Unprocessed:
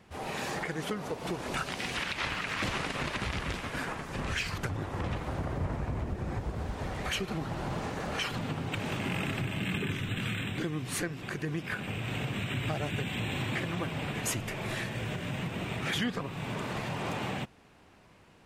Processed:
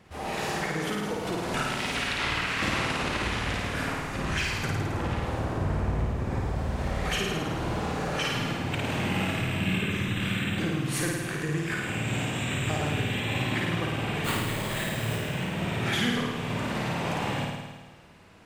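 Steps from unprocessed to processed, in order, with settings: 11.41–12.78 bell 7400 Hz +10.5 dB 0.36 oct; 14.24–15.18 sample-rate reducer 5600 Hz, jitter 0%; flutter echo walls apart 9.2 m, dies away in 1.3 s; gain +1.5 dB

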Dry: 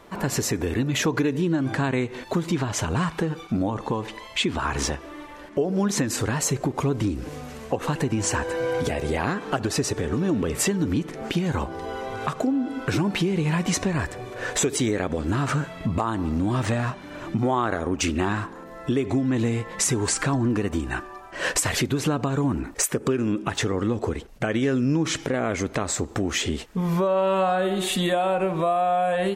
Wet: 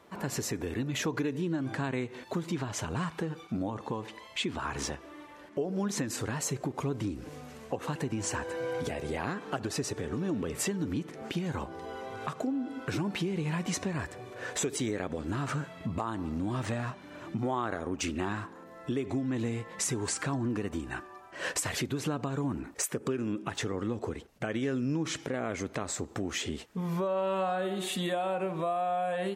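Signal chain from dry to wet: HPF 79 Hz; gain -8.5 dB

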